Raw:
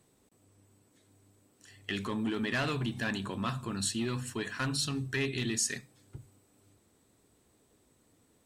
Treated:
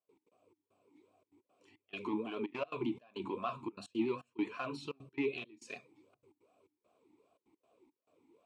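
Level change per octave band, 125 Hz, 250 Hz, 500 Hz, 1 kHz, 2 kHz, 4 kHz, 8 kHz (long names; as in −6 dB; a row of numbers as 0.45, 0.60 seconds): −16.5, −4.0, −0.5, −3.0, −10.5, −14.5, −27.0 decibels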